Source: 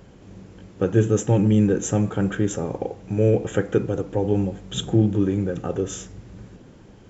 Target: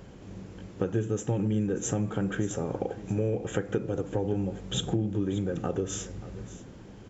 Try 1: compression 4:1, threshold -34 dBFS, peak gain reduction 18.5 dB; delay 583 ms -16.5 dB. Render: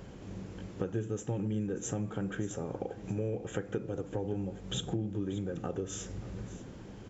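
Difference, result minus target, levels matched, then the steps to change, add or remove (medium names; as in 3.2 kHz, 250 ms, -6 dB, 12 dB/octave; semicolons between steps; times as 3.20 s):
compression: peak gain reduction +6 dB
change: compression 4:1, threshold -26 dBFS, peak gain reduction 12.5 dB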